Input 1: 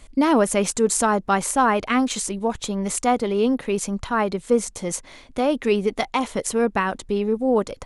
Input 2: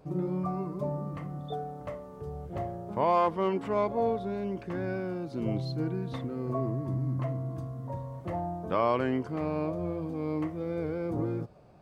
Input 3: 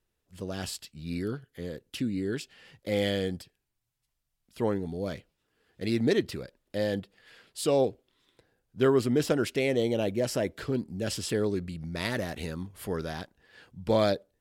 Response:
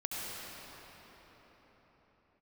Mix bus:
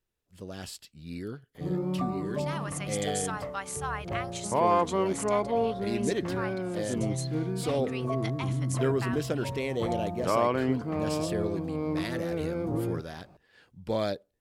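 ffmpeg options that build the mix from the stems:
-filter_complex "[0:a]highpass=1200,adelay=2250,volume=0.282[s0];[1:a]adelay=1550,volume=1.12[s1];[2:a]volume=0.562[s2];[s0][s1][s2]amix=inputs=3:normalize=0"

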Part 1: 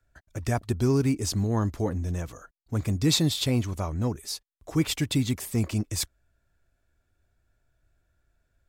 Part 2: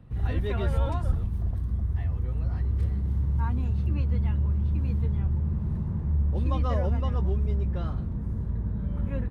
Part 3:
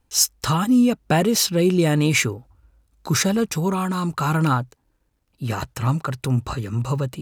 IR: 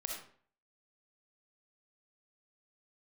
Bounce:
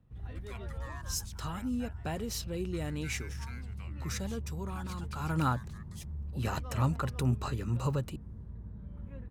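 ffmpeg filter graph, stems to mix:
-filter_complex "[0:a]highpass=360,aeval=exprs='val(0)*sin(2*PI*1500*n/s+1500*0.25/0.3*sin(2*PI*0.3*n/s))':c=same,volume=0.126[s0];[1:a]volume=0.178[s1];[2:a]adelay=950,volume=0.398,afade=t=in:st=5.18:d=0.36:silence=0.298538[s2];[s0][s1][s2]amix=inputs=3:normalize=0"

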